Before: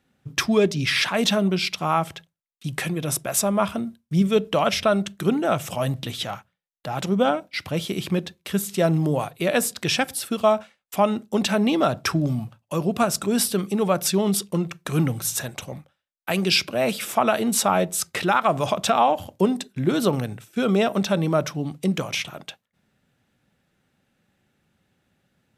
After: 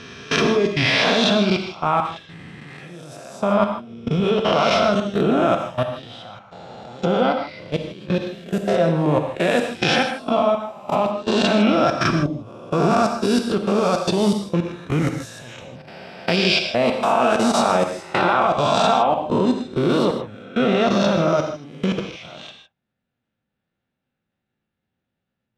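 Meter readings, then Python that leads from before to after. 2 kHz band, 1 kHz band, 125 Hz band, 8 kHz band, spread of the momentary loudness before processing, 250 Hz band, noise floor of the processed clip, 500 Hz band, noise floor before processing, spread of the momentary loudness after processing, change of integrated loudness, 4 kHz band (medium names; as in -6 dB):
+3.5 dB, +4.0 dB, +1.0 dB, -8.0 dB, 9 LU, +2.5 dB, -80 dBFS, +4.0 dB, -77 dBFS, 20 LU, +3.0 dB, +2.5 dB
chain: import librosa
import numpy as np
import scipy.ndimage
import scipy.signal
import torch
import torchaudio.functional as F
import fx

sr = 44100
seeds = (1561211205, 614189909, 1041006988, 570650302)

y = fx.spec_swells(x, sr, rise_s=1.18)
y = scipy.signal.sosfilt(scipy.signal.butter(2, 3900.0, 'lowpass', fs=sr, output='sos'), y)
y = fx.level_steps(y, sr, step_db=21)
y = fx.peak_eq(y, sr, hz=1900.0, db=-2.0, octaves=0.77)
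y = fx.rev_gated(y, sr, seeds[0], gate_ms=180, shape='flat', drr_db=4.5)
y = F.gain(torch.from_numpy(y), 3.0).numpy()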